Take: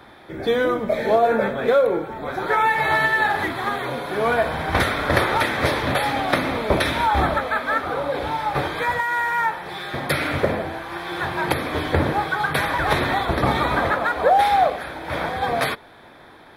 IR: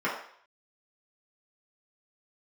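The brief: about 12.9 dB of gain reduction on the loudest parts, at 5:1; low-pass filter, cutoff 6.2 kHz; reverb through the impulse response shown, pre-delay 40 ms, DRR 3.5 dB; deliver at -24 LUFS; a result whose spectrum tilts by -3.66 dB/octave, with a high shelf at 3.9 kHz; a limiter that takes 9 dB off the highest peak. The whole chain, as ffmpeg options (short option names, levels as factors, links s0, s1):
-filter_complex "[0:a]lowpass=6200,highshelf=f=3900:g=-8,acompressor=threshold=0.0398:ratio=5,alimiter=limit=0.0668:level=0:latency=1,asplit=2[s0][s1];[1:a]atrim=start_sample=2205,adelay=40[s2];[s1][s2]afir=irnorm=-1:irlink=0,volume=0.178[s3];[s0][s3]amix=inputs=2:normalize=0,volume=2.11"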